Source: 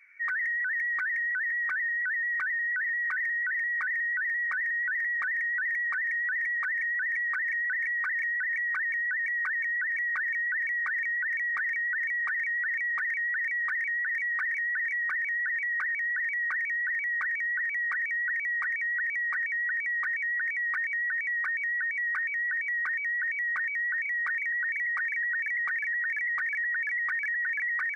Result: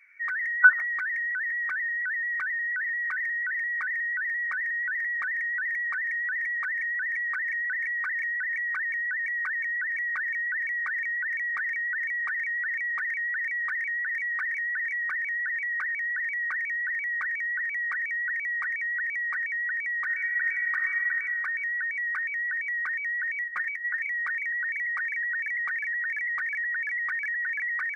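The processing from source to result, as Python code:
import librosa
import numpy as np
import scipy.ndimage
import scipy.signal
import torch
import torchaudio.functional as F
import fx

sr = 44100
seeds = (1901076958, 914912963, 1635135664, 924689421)

y = fx.spec_box(x, sr, start_s=0.63, length_s=0.21, low_hz=570.0, high_hz=1500.0, gain_db=26)
y = fx.reverb_throw(y, sr, start_s=20.04, length_s=1.13, rt60_s=2.0, drr_db=5.0)
y = fx.comb(y, sr, ms=5.6, depth=0.79, at=(23.43, 24.07))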